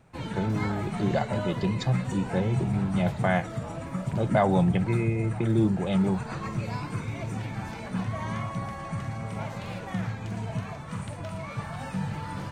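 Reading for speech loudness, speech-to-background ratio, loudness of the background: -27.5 LUFS, 6.0 dB, -33.5 LUFS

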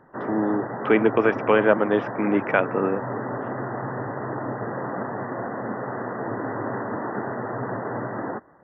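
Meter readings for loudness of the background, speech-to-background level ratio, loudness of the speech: -30.5 LUFS, 8.0 dB, -22.5 LUFS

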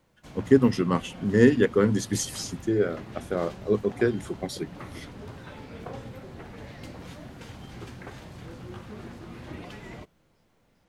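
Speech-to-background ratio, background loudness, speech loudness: 17.5 dB, -42.5 LUFS, -25.0 LUFS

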